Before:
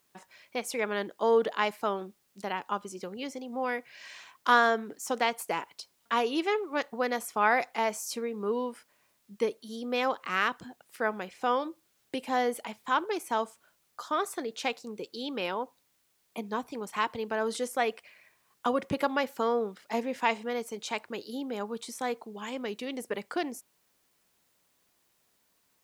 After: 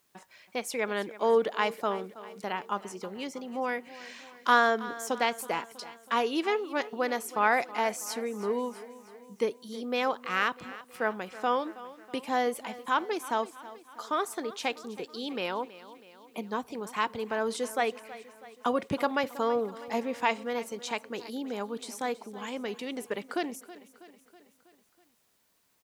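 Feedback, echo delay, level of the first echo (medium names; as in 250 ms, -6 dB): 57%, 323 ms, -17.0 dB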